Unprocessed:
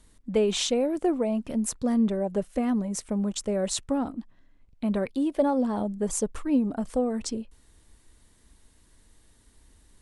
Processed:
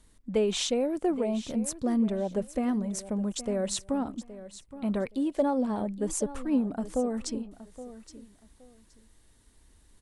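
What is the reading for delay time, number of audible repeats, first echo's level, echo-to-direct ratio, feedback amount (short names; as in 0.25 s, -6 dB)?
0.82 s, 2, -15.0 dB, -15.0 dB, 22%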